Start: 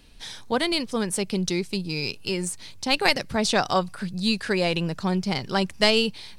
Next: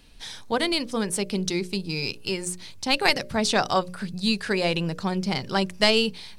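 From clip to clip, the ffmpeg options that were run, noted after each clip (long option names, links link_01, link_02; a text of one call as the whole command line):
ffmpeg -i in.wav -af "bandreject=frequency=60:width_type=h:width=6,bandreject=frequency=120:width_type=h:width=6,bandreject=frequency=180:width_type=h:width=6,bandreject=frequency=240:width_type=h:width=6,bandreject=frequency=300:width_type=h:width=6,bandreject=frequency=360:width_type=h:width=6,bandreject=frequency=420:width_type=h:width=6,bandreject=frequency=480:width_type=h:width=6,bandreject=frequency=540:width_type=h:width=6,bandreject=frequency=600:width_type=h:width=6" out.wav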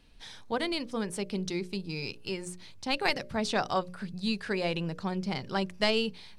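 ffmpeg -i in.wav -af "highshelf=frequency=5200:gain=-8.5,volume=-6dB" out.wav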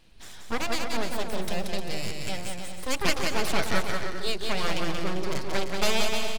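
ffmpeg -i in.wav -filter_complex "[0:a]aeval=exprs='abs(val(0))':channel_layout=same,asplit=2[link_01][link_02];[link_02]aecho=0:1:180|306|394.2|455.9|499.2:0.631|0.398|0.251|0.158|0.1[link_03];[link_01][link_03]amix=inputs=2:normalize=0,volume=4dB" out.wav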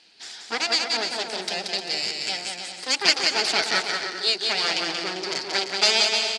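ffmpeg -i in.wav -af "highpass=470,equalizer=frequency=560:width_type=q:width=4:gain=-9,equalizer=frequency=1100:width_type=q:width=4:gain=-9,equalizer=frequency=4700:width_type=q:width=4:gain=10,lowpass=frequency=8100:width=0.5412,lowpass=frequency=8100:width=1.3066,volume=6.5dB" out.wav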